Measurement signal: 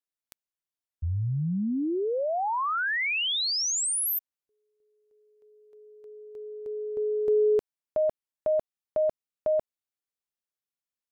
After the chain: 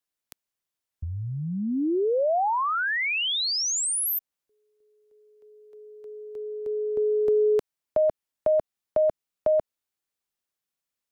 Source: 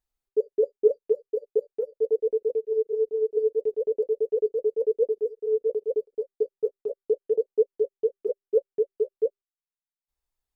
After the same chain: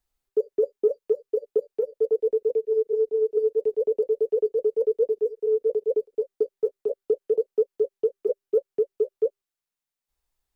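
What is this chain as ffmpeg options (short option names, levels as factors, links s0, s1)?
-filter_complex "[0:a]acrossover=split=300|630[s0][s1][s2];[s0]acompressor=threshold=0.0126:ratio=4[s3];[s1]acompressor=threshold=0.0282:ratio=4[s4];[s2]acompressor=threshold=0.0282:ratio=4[s5];[s3][s4][s5]amix=inputs=3:normalize=0,volume=1.88"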